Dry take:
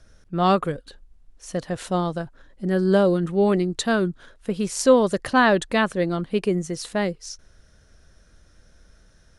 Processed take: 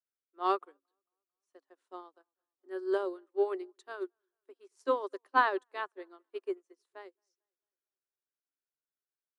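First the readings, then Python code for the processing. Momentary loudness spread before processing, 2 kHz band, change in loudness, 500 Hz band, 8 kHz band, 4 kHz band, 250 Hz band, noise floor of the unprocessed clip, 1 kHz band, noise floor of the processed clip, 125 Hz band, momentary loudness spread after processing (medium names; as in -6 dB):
14 LU, -11.5 dB, -11.5 dB, -13.5 dB, under -35 dB, -18.0 dB, -21.5 dB, -56 dBFS, -8.5 dB, under -85 dBFS, under -40 dB, 21 LU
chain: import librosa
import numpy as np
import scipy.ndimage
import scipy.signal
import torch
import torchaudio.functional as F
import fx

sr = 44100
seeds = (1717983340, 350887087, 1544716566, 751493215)

y = scipy.signal.sosfilt(scipy.signal.cheby1(6, 9, 270.0, 'highpass', fs=sr, output='sos'), x)
y = fx.echo_wet_lowpass(y, sr, ms=223, feedback_pct=52, hz=3100.0, wet_db=-21.5)
y = fx.upward_expand(y, sr, threshold_db=-42.0, expansion=2.5)
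y = y * librosa.db_to_amplitude(-2.0)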